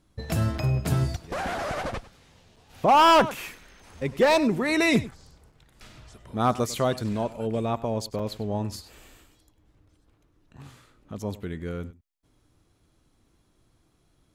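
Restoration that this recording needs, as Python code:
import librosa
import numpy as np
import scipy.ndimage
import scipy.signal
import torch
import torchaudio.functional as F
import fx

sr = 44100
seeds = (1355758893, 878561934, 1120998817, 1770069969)

y = fx.fix_declip(x, sr, threshold_db=-13.0)
y = fx.fix_interpolate(y, sr, at_s=(0.58, 2.56, 5.11, 5.52, 8.19), length_ms=4.9)
y = fx.fix_echo_inverse(y, sr, delay_ms=99, level_db=-18.0)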